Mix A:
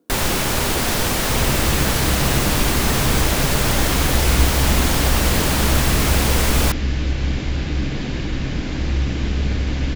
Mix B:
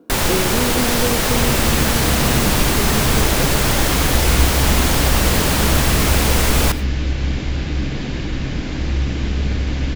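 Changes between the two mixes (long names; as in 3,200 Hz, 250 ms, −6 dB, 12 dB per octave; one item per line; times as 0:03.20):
speech +12.0 dB
reverb: on, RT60 0.40 s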